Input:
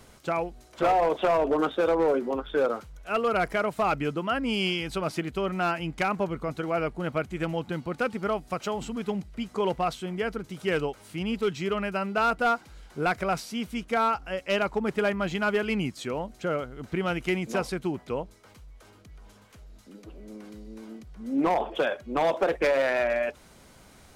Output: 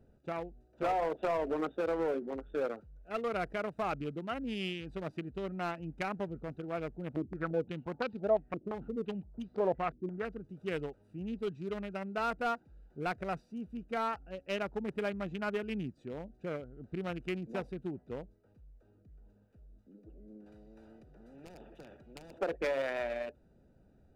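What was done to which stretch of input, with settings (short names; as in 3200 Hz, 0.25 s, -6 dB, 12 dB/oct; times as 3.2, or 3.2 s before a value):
7.16–10.25 stepped low-pass 5.8 Hz 320–4200 Hz
20.46–22.39 spectral compressor 4:1
whole clip: Wiener smoothing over 41 samples; gain -8 dB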